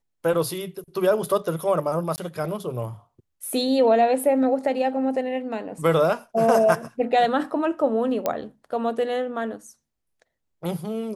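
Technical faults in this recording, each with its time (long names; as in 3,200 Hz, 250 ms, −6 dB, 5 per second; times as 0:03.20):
0:02.16–0:02.18: drop-out 19 ms
0:08.26: click −10 dBFS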